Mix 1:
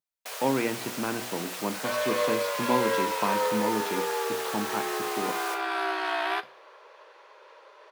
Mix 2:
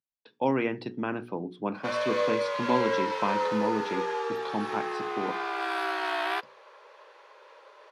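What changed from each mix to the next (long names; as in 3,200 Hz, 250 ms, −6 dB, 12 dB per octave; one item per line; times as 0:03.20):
first sound: muted
reverb: off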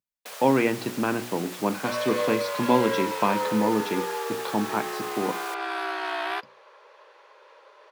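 speech +5.5 dB
first sound: unmuted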